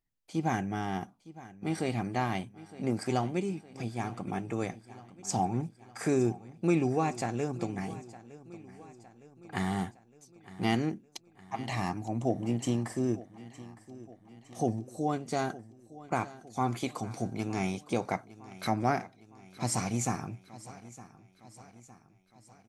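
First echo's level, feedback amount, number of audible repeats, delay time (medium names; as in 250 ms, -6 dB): -18.0 dB, 54%, 4, 911 ms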